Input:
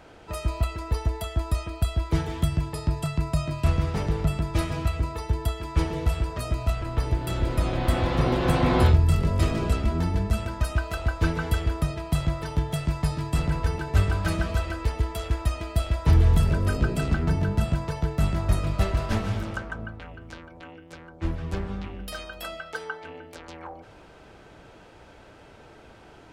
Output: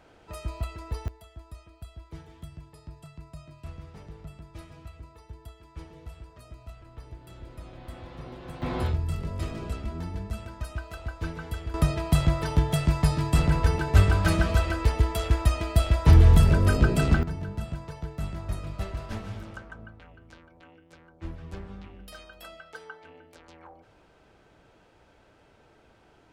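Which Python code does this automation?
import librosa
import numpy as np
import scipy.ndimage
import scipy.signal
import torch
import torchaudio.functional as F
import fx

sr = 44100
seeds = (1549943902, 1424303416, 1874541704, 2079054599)

y = fx.gain(x, sr, db=fx.steps((0.0, -7.0), (1.08, -19.0), (8.62, -9.5), (11.74, 3.0), (17.23, -9.5)))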